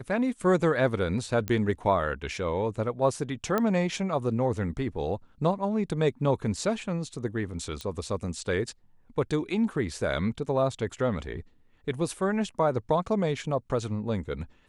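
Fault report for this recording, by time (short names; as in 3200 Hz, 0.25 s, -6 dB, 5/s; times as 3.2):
1.48 pop -16 dBFS
3.58 pop -13 dBFS
7.81 pop -22 dBFS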